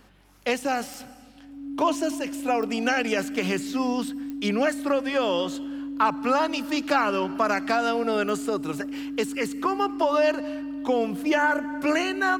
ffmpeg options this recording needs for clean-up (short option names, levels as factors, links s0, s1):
-af "adeclick=t=4,bandreject=f=47.7:t=h:w=4,bandreject=f=95.4:t=h:w=4,bandreject=f=143.1:t=h:w=4,bandreject=f=190.8:t=h:w=4,bandreject=f=238.5:t=h:w=4,bandreject=f=280:w=30"